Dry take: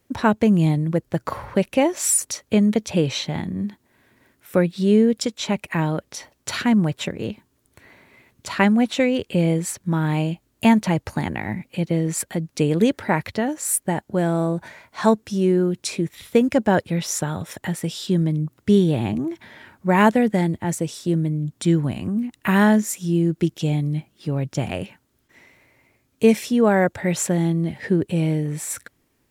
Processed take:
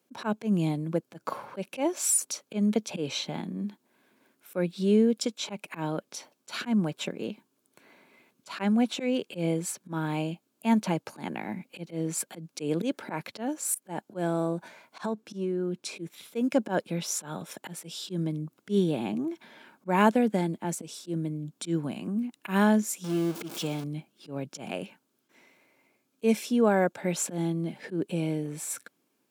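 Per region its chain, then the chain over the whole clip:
15.05–15.96 high shelf 4500 Hz -7.5 dB + compressor 10:1, threshold -19 dBFS
23.04–23.84 zero-crossing step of -26.5 dBFS + low shelf 200 Hz -6.5 dB
whole clip: notch 1900 Hz, Q 6.2; auto swell 0.102 s; HPF 180 Hz 24 dB/oct; gain -5.5 dB

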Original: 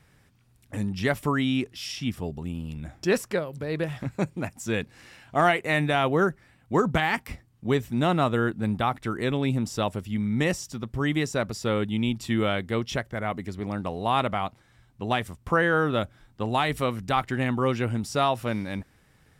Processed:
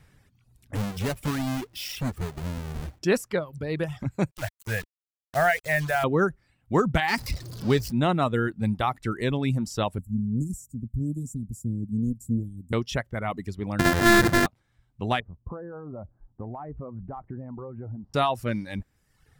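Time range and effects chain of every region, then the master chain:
0.75–2.99 half-waves squared off + compressor 2:1, threshold -32 dBFS
4.31–6.04 EQ curve 130 Hz 0 dB, 310 Hz -19 dB, 640 Hz +3 dB, 1100 Hz -12 dB, 1600 Hz +5 dB, 4800 Hz -18 dB, 13000 Hz +4 dB + requantised 6-bit, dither none
7.08–7.92 zero-crossing step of -32 dBFS + bell 4800 Hz +11.5 dB 0.46 oct
9.98–12.73 Chebyshev band-stop 270–7500 Hz, order 4 + Doppler distortion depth 0.15 ms
13.79–14.46 sample sorter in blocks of 128 samples + bell 1700 Hz +10 dB 0.59 oct + sample leveller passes 3
15.2–18.14 LPF 1000 Hz 24 dB/oct + compressor, threshold -34 dBFS
whole clip: reverb removal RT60 0.93 s; low shelf 110 Hz +7.5 dB

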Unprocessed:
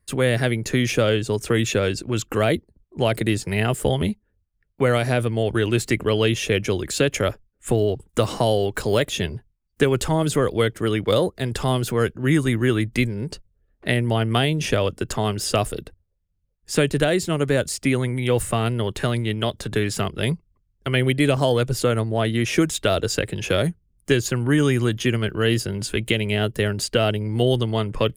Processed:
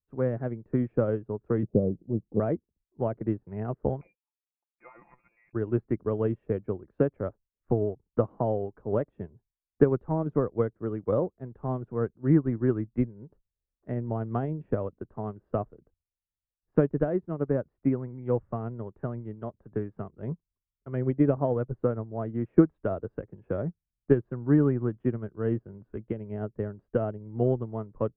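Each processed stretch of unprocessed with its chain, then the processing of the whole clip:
1.63–2.4 steep low-pass 720 Hz + bell 180 Hz +8.5 dB 0.75 oct
4.01–5.53 inverted band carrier 2600 Hz + comb 5.8 ms, depth 72% + core saturation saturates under 750 Hz
whole clip: LPF 1200 Hz 24 dB/oct; dynamic EQ 230 Hz, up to +3 dB, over -35 dBFS, Q 1.1; upward expander 2.5:1, over -29 dBFS

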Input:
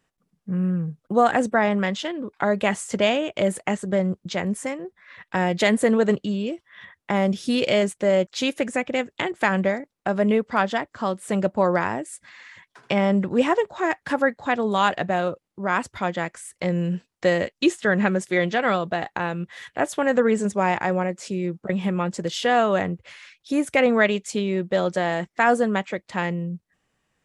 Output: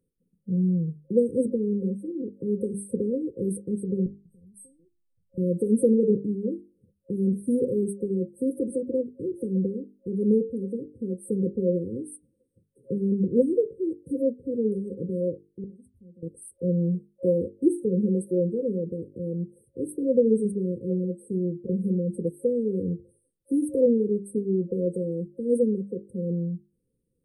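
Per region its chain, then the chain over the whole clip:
4.06–5.38 tone controls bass +13 dB, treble +11 dB + compressor 3:1, threshold -21 dBFS + resonator 760 Hz, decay 0.18 s, mix 100%
15.64–16.23 passive tone stack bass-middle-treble 6-0-2 + notch comb 150 Hz
whole clip: notches 50/100/150/200/250/300/350/400/450 Hz; FFT band-reject 540–8200 Hz; high shelf 6500 Hz -5 dB

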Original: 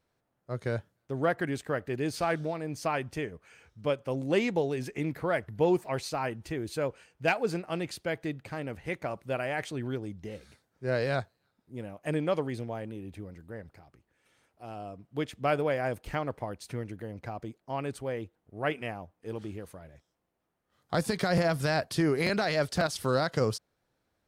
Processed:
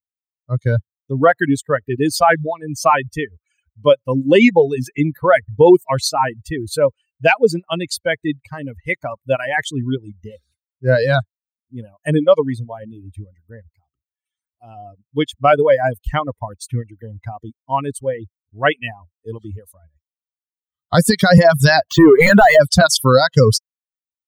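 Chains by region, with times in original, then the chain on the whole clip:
21.88–22.6 overdrive pedal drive 20 dB, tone 1400 Hz, clips at -16.5 dBFS + decimation joined by straight lines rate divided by 4×
whole clip: per-bin expansion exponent 2; reverb removal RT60 0.64 s; maximiser +24.5 dB; gain -1 dB

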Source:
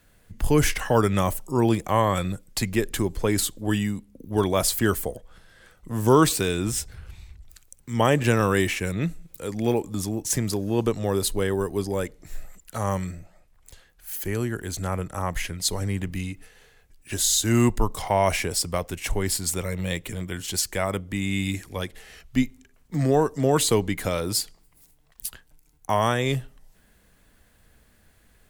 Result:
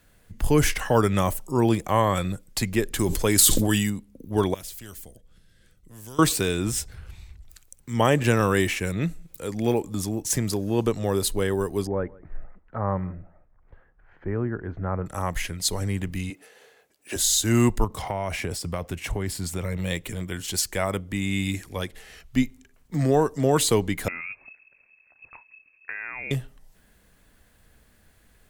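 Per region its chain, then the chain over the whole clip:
2.99–3.9 high shelf 3400 Hz +10.5 dB + sustainer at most 33 dB/s
4.54–6.19 passive tone stack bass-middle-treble 10-0-1 + spectral compressor 2:1
11.87–15.06 LPF 1600 Hz 24 dB/oct + echo 0.158 s -23.5 dB
16.3–17.16 HPF 270 Hz + bell 540 Hz +7 dB 1.4 oct
17.84–19.77 HPF 49 Hz + compressor 4:1, threshold -25 dBFS + tone controls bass +4 dB, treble -5 dB
24.08–26.31 compressor 5:1, threshold -31 dBFS + inverted band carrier 2600 Hz
whole clip: dry

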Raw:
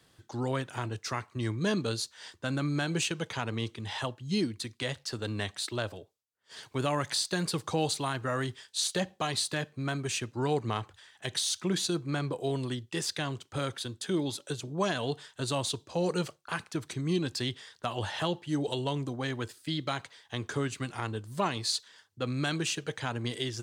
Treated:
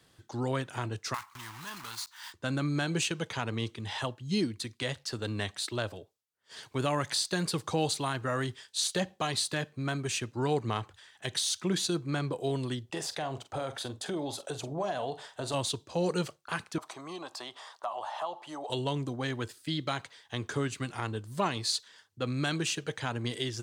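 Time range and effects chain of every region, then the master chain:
1.14–2.34 block floating point 3-bit + compressor 5:1, threshold -34 dBFS + resonant low shelf 710 Hz -11 dB, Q 3
12.85–15.54 bell 710 Hz +15 dB 1 oct + compressor 3:1, threshold -33 dBFS + doubler 45 ms -12 dB
16.78–18.7 HPF 400 Hz + band shelf 860 Hz +15.5 dB 1.3 oct + compressor 2:1, threshold -43 dBFS
whole clip: dry

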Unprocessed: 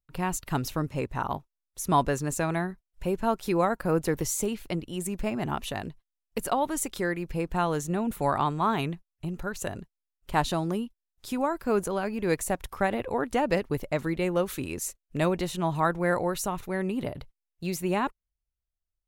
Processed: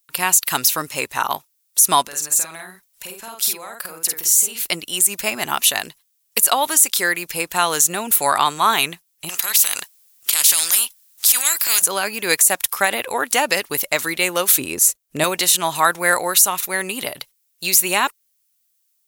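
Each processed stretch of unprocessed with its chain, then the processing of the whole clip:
2.02–4.64 compressor 16:1, threshold -38 dBFS + doubler 49 ms -3 dB
9.29–11.82 transient shaper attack -10 dB, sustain -5 dB + spectral compressor 4:1
14.58–15.24 de-esser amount 30% + tilt shelf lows +8 dB, about 850 Hz
whole clip: differentiator; maximiser +27.5 dB; gain -1 dB

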